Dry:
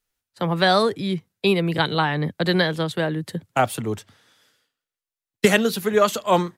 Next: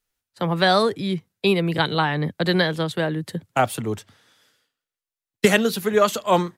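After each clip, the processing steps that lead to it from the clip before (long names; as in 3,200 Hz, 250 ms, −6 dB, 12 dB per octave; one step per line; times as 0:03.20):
no processing that can be heard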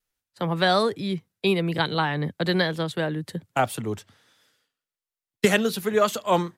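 pitch vibrato 1.2 Hz 23 cents
level −3 dB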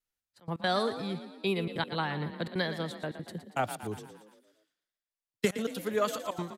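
gate pattern "xxxxx.x.xxxxxxx." 188 BPM −24 dB
on a send: echo with shifted repeats 116 ms, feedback 56%, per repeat +36 Hz, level −11.5 dB
on the sum: level −8 dB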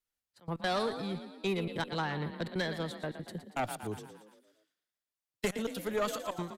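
tube saturation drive 24 dB, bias 0.35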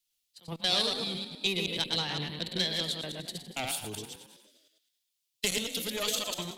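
delay that plays each chunk backwards 104 ms, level −3 dB
high shelf with overshoot 2,200 Hz +13 dB, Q 1.5
level −3.5 dB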